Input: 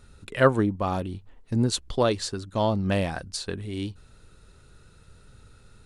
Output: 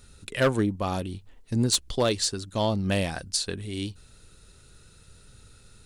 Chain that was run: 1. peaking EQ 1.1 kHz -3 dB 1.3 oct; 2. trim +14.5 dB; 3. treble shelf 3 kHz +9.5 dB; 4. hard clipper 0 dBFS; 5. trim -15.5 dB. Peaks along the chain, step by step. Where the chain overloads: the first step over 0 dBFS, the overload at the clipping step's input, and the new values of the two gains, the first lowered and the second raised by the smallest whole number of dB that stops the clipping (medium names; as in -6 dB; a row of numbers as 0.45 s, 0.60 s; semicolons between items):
-7.0 dBFS, +7.5 dBFS, +8.0 dBFS, 0.0 dBFS, -15.5 dBFS; step 2, 8.0 dB; step 2 +6.5 dB, step 5 -7.5 dB